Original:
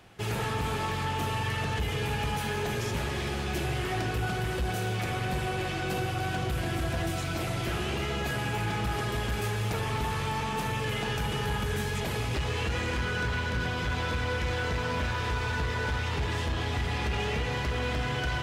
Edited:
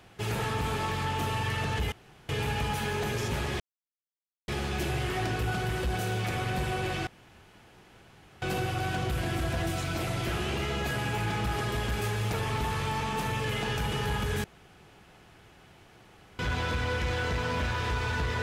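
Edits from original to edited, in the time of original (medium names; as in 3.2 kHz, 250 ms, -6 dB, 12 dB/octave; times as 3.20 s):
1.92 s: insert room tone 0.37 s
3.23 s: insert silence 0.88 s
5.82 s: insert room tone 1.35 s
11.84–13.79 s: room tone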